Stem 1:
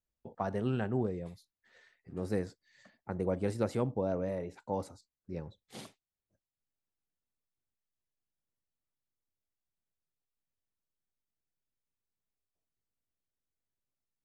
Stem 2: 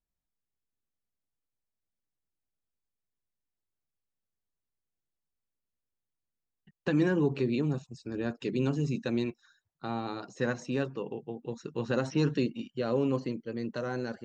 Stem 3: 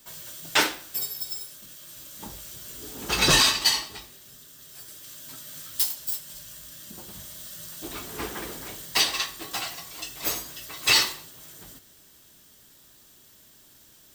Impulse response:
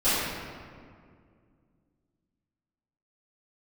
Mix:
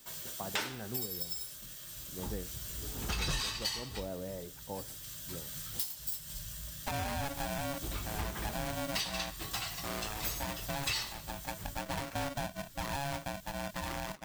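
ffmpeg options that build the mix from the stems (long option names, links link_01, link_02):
-filter_complex "[0:a]volume=-6dB[link_01];[1:a]acrusher=samples=16:mix=1:aa=0.000001:lfo=1:lforange=9.6:lforate=3.6,asoftclip=type=hard:threshold=-23.5dB,aeval=exprs='val(0)*sgn(sin(2*PI*420*n/s))':channel_layout=same,volume=-2.5dB[link_02];[2:a]asubboost=boost=7:cutoff=120,volume=-2dB[link_03];[link_01][link_02][link_03]amix=inputs=3:normalize=0,acompressor=threshold=-34dB:ratio=4"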